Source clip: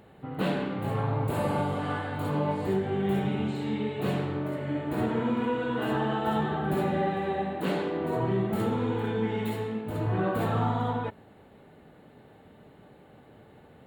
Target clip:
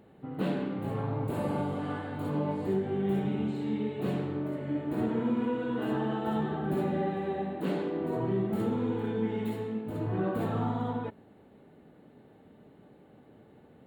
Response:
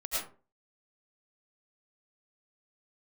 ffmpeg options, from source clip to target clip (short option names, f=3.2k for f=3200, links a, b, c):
-af "equalizer=f=270:t=o:w=1.9:g=7.5,volume=-7.5dB"